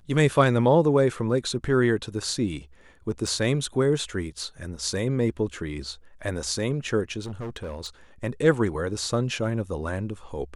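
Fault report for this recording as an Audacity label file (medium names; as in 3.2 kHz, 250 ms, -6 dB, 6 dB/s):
3.270000	3.270000	dropout 3.7 ms
7.230000	7.880000	clipped -29.5 dBFS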